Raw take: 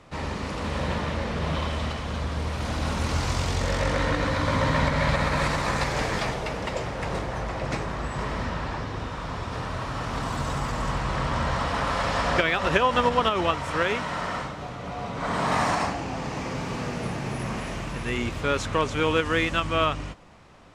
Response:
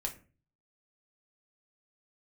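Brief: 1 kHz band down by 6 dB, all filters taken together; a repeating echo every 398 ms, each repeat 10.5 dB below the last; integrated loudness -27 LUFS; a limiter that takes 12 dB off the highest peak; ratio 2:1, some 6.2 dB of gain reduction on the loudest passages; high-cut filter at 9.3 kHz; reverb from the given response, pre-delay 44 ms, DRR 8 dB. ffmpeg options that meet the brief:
-filter_complex "[0:a]lowpass=9300,equalizer=f=1000:t=o:g=-7.5,acompressor=threshold=0.0282:ratio=2,alimiter=level_in=1.41:limit=0.0631:level=0:latency=1,volume=0.708,aecho=1:1:398|796|1194:0.299|0.0896|0.0269,asplit=2[s0][s1];[1:a]atrim=start_sample=2205,adelay=44[s2];[s1][s2]afir=irnorm=-1:irlink=0,volume=0.355[s3];[s0][s3]amix=inputs=2:normalize=0,volume=2.51"

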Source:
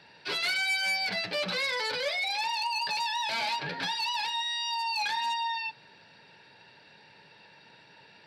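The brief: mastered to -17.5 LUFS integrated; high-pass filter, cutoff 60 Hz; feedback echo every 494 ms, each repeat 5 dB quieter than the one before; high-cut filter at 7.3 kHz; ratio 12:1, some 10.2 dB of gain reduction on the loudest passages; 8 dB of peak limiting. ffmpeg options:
-af "highpass=60,lowpass=7300,acompressor=threshold=0.0141:ratio=12,alimiter=level_in=3.76:limit=0.0631:level=0:latency=1,volume=0.266,aecho=1:1:494|988|1482|1976|2470|2964|3458:0.562|0.315|0.176|0.0988|0.0553|0.031|0.0173,volume=13.3"

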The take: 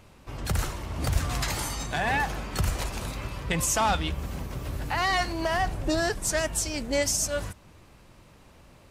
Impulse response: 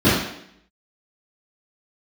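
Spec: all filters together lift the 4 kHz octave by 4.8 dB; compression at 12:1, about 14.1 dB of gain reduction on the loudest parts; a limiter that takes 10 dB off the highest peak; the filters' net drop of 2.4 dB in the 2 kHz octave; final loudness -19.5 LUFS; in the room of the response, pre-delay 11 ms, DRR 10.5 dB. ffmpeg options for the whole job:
-filter_complex "[0:a]equalizer=f=2000:t=o:g=-4.5,equalizer=f=4000:t=o:g=7.5,acompressor=threshold=0.0224:ratio=12,alimiter=level_in=2.11:limit=0.0631:level=0:latency=1,volume=0.473,asplit=2[s0][s1];[1:a]atrim=start_sample=2205,adelay=11[s2];[s1][s2]afir=irnorm=-1:irlink=0,volume=0.0211[s3];[s0][s3]amix=inputs=2:normalize=0,volume=9.44"

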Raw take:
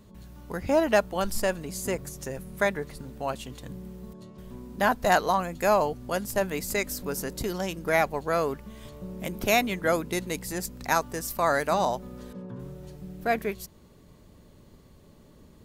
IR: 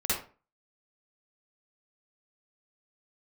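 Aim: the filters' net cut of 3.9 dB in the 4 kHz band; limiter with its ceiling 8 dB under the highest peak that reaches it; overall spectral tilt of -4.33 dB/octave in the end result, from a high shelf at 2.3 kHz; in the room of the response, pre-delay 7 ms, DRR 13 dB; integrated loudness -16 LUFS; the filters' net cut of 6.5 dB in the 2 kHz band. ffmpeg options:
-filter_complex "[0:a]equalizer=f=2000:t=o:g=-9,highshelf=f=2300:g=3.5,equalizer=f=4000:t=o:g=-5.5,alimiter=limit=0.15:level=0:latency=1,asplit=2[s0][s1];[1:a]atrim=start_sample=2205,adelay=7[s2];[s1][s2]afir=irnorm=-1:irlink=0,volume=0.0841[s3];[s0][s3]amix=inputs=2:normalize=0,volume=5.01"

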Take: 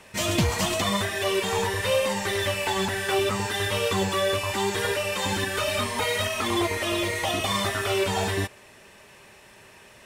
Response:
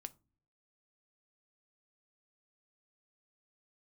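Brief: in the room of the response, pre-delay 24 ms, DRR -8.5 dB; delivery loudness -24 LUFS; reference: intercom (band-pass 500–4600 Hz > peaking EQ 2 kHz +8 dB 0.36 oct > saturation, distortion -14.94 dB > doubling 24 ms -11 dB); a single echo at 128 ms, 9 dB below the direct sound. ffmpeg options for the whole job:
-filter_complex "[0:a]aecho=1:1:128:0.355,asplit=2[s0][s1];[1:a]atrim=start_sample=2205,adelay=24[s2];[s1][s2]afir=irnorm=-1:irlink=0,volume=4.73[s3];[s0][s3]amix=inputs=2:normalize=0,highpass=500,lowpass=4600,equalizer=f=2000:t=o:w=0.36:g=8,asoftclip=threshold=0.224,asplit=2[s4][s5];[s5]adelay=24,volume=0.282[s6];[s4][s6]amix=inputs=2:normalize=0,volume=0.447"

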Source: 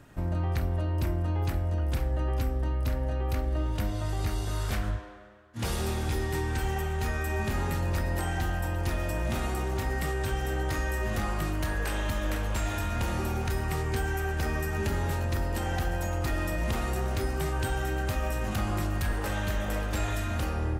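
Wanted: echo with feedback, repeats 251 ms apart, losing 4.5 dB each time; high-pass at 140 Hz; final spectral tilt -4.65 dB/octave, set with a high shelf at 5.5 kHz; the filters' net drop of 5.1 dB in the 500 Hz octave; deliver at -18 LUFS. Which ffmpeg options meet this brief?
-af "highpass=140,equalizer=f=500:t=o:g=-7,highshelf=f=5500:g=-3,aecho=1:1:251|502|753|1004|1255|1506|1757|2008|2259:0.596|0.357|0.214|0.129|0.0772|0.0463|0.0278|0.0167|0.01,volume=6.68"

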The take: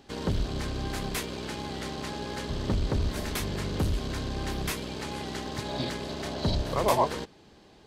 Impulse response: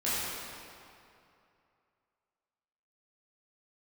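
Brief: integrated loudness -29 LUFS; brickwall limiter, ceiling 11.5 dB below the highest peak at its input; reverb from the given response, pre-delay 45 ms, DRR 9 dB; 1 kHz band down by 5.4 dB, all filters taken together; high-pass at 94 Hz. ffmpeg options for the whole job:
-filter_complex "[0:a]highpass=94,equalizer=f=1000:t=o:g=-6.5,alimiter=level_in=1.19:limit=0.0631:level=0:latency=1,volume=0.841,asplit=2[s0][s1];[1:a]atrim=start_sample=2205,adelay=45[s2];[s1][s2]afir=irnorm=-1:irlink=0,volume=0.119[s3];[s0][s3]amix=inputs=2:normalize=0,volume=2.11"

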